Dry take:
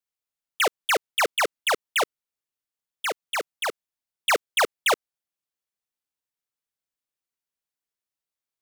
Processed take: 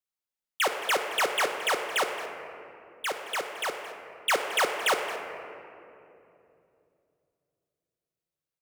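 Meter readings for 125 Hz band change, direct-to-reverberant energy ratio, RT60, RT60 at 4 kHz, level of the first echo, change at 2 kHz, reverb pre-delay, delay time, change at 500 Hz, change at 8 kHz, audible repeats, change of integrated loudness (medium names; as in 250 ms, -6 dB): no reading, 3.5 dB, 2.8 s, 1.4 s, -15.5 dB, -2.5 dB, 3 ms, 221 ms, -2.5 dB, -3.5 dB, 1, -3.5 dB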